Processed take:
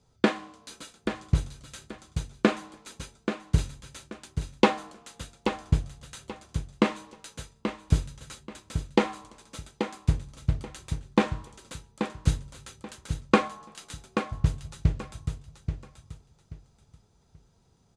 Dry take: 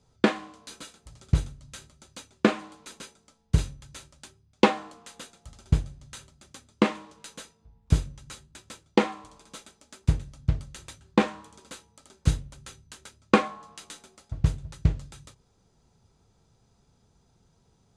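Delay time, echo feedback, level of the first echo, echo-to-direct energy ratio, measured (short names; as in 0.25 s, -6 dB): 0.832 s, 24%, -8.0 dB, -7.5 dB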